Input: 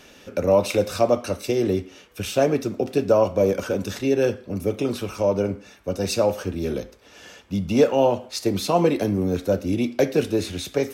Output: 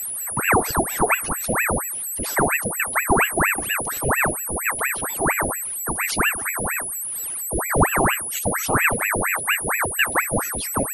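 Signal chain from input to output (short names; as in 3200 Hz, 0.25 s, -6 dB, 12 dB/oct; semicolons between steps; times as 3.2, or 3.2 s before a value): spectral contrast raised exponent 1.8; whine 10000 Hz -25 dBFS; ring modulator with a swept carrier 1200 Hz, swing 90%, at 4.3 Hz; gain +2 dB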